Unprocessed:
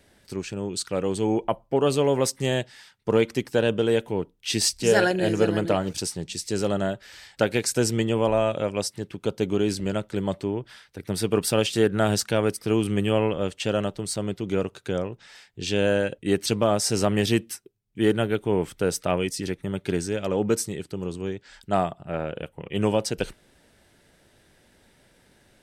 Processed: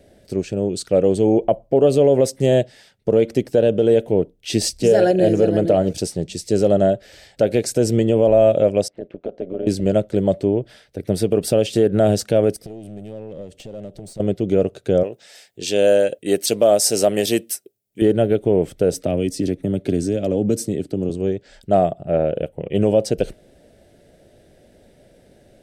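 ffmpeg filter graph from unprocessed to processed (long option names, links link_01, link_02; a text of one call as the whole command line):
ffmpeg -i in.wav -filter_complex "[0:a]asettb=1/sr,asplit=3[link_01][link_02][link_03];[link_01]atrim=end=8.884[link_04];[link_02]atrim=start=8.88:end=9.67,asetpts=PTS-STARTPTS,afade=type=in:duration=0.004:curve=qsin,afade=type=out:start_time=0.786:duration=0.004:curve=qsin,highpass=280,lowpass=2100,acompressor=threshold=-32dB:ratio=2.5:attack=3.2:release=140:knee=1:detection=peak,tremolo=f=180:d=0.788[link_05];[link_03]atrim=start=9.666[link_06];[link_04][link_05]acrossfade=duration=0.004:curve1=hsin:curve2=qsin[link_07];[link_07][link_06]acrossfade=duration=0.004:curve1=qsin:curve2=hsin,asettb=1/sr,asplit=3[link_08][link_09][link_10];[link_08]atrim=end=12.564[link_11];[link_09]atrim=start=12.56:end=14.2,asetpts=PTS-STARTPTS,afade=type=in:duration=0.004:curve=qsin,afade=type=out:start_time=1.636:duration=0.004:curve=qsin,equalizer=frequency=1100:width_type=o:width=2.8:gain=-6,acompressor=threshold=-36dB:ratio=20:attack=3.2:release=140:knee=1:detection=peak,aeval=exprs='clip(val(0),-1,0.0106)':channel_layout=same[link_12];[link_10]atrim=start=14.196[link_13];[link_11][link_12]acrossfade=duration=0.004:curve1=hsin:curve2=qsin[link_14];[link_14][link_13]acrossfade=duration=0.004:curve1=qsin:curve2=hsin,asettb=1/sr,asplit=3[link_15][link_16][link_17];[link_15]atrim=end=15.034[link_18];[link_16]atrim=start=15.03:end=18.02,asetpts=PTS-STARTPTS,afade=type=in:duration=0.004:curve=qsin,afade=type=out:start_time=2.986:duration=0.004:curve=qsin,highpass=frequency=540:poles=1,aemphasis=mode=production:type=50kf[link_19];[link_17]atrim=start=18.016[link_20];[link_18][link_19]acrossfade=duration=0.004:curve1=hsin:curve2=qsin[link_21];[link_21][link_20]acrossfade=duration=0.004:curve1=qsin:curve2=hsin,asettb=1/sr,asplit=3[link_22][link_23][link_24];[link_22]atrim=end=18.924[link_25];[link_23]atrim=start=18.92:end=21.1,asetpts=PTS-STARTPTS,afade=type=in:duration=0.004:curve=qsin,afade=type=out:start_time=2.176:duration=0.004:curve=qsin,acrossover=split=140|3000[link_26][link_27][link_28];[link_27]acompressor=threshold=-32dB:ratio=3:attack=3.2:release=140:knee=2.83:detection=peak[link_29];[link_26][link_29][link_28]amix=inputs=3:normalize=0,equalizer=frequency=270:width_type=o:width=0.69:gain=9[link_30];[link_24]atrim=start=21.096[link_31];[link_25][link_30]acrossfade=duration=0.004:curve1=hsin:curve2=qsin[link_32];[link_32][link_31]acrossfade=duration=0.004:curve1=qsin:curve2=hsin,lowshelf=frequency=790:width_type=q:width=3:gain=7.5,alimiter=limit=-5.5dB:level=0:latency=1:release=86" out.wav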